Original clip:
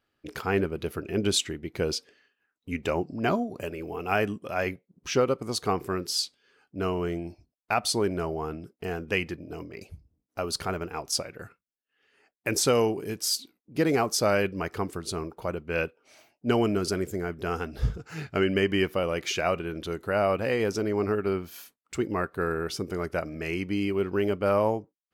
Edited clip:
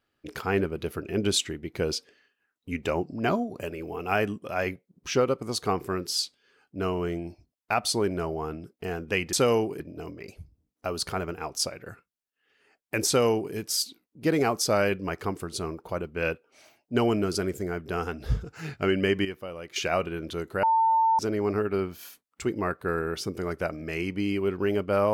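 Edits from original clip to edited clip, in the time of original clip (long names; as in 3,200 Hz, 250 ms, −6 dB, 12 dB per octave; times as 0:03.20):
0:12.60–0:13.07: duplicate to 0:09.33
0:18.78–0:19.29: clip gain −10.5 dB
0:20.16–0:20.72: beep over 898 Hz −18.5 dBFS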